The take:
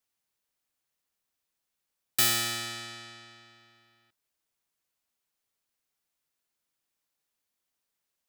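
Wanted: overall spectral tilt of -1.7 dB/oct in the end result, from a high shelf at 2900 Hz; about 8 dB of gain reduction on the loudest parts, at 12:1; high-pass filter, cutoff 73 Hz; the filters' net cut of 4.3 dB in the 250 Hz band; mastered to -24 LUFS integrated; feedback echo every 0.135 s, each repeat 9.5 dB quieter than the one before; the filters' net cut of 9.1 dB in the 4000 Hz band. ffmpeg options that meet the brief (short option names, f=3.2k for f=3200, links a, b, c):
-af "highpass=73,equalizer=f=250:t=o:g=-6,highshelf=f=2.9k:g=-6.5,equalizer=f=4k:t=o:g=-6.5,acompressor=threshold=-33dB:ratio=12,aecho=1:1:135|270|405|540:0.335|0.111|0.0365|0.012,volume=14.5dB"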